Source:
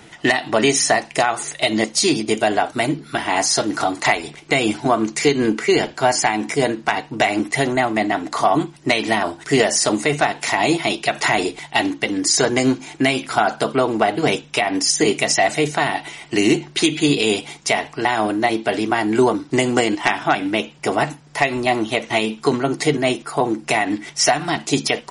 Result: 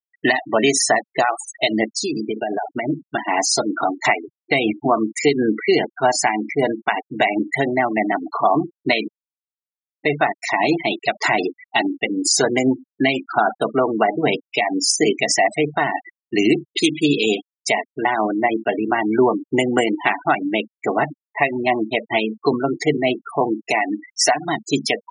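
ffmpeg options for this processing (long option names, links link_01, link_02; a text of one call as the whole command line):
ffmpeg -i in.wav -filter_complex "[0:a]asettb=1/sr,asplit=3[link_01][link_02][link_03];[link_01]atrim=end=1.904[link_04];[link_02]atrim=start=1.9:end=2.86,asetpts=PTS-STARTPTS,afade=type=in:duration=0.004:curve=qsin,afade=type=out:start_time=0.956:duration=0.004:curve=qsin,acompressor=threshold=-17dB:ratio=16:attack=3.2:release=140:knee=1:detection=peak[link_05];[link_03]atrim=start=2.856[link_06];[link_04][link_05]acrossfade=duration=0.004:curve1=hsin:curve2=qsin[link_07];[link_07][link_06]acrossfade=duration=0.004:curve1=qsin:curve2=hsin,asettb=1/sr,asplit=3[link_08][link_09][link_10];[link_08]atrim=end=23.684[link_11];[link_09]atrim=start=23.68:end=24.45,asetpts=PTS-STARTPTS,afade=type=in:duration=0.004:curve=qsin,afade=type=out:start_time=0.766:duration=0.004:curve=qsin,highpass=frequency=190:poles=1[link_12];[link_10]atrim=start=24.446[link_13];[link_11][link_12]acrossfade=duration=0.004:curve1=hsin:curve2=qsin[link_14];[link_14][link_13]acrossfade=duration=0.004:curve1=qsin:curve2=hsin,asplit=3[link_15][link_16][link_17];[link_15]atrim=end=9.08,asetpts=PTS-STARTPTS,afade=type=out:start_time=9.076:duration=0.004:curve=hsin[link_18];[link_16]atrim=start=9.08:end=10.03,asetpts=PTS-STARTPTS,volume=0[link_19];[link_17]atrim=start=10.03,asetpts=PTS-STARTPTS,afade=type=in:duration=0.004:curve=hsin[link_20];[link_18][link_19][link_20]concat=n=3:v=0:a=1,afftfilt=real='re*gte(hypot(re,im),0.126)':imag='im*gte(hypot(re,im),0.126)':win_size=1024:overlap=0.75,highpass=140" out.wav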